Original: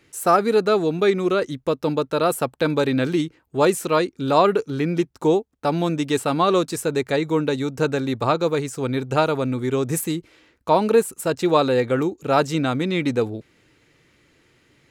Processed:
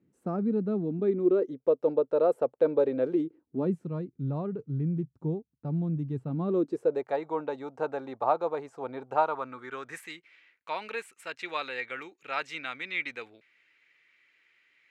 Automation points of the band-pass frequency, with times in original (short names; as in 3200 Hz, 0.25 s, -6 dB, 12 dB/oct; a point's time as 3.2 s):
band-pass, Q 2.8
0.83 s 200 Hz
1.69 s 500 Hz
3.08 s 500 Hz
3.92 s 140 Hz
6.24 s 140 Hz
7.09 s 780 Hz
9.07 s 780 Hz
10.16 s 2200 Hz